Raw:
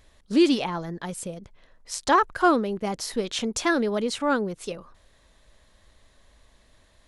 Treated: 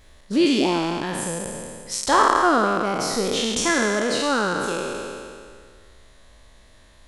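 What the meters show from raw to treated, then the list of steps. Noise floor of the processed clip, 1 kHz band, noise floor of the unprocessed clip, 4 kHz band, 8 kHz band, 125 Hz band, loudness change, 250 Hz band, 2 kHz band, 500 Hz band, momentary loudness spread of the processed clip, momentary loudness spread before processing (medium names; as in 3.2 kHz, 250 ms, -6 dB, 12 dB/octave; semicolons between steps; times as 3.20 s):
-51 dBFS, +5.0 dB, -60 dBFS, +6.5 dB, +8.0 dB, +4.0 dB, +3.5 dB, +2.0 dB, +6.0 dB, +3.5 dB, 14 LU, 15 LU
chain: spectral sustain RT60 1.99 s; in parallel at +0.5 dB: compression, threshold -29 dBFS, peak gain reduction 17.5 dB; on the sum: trim -3 dB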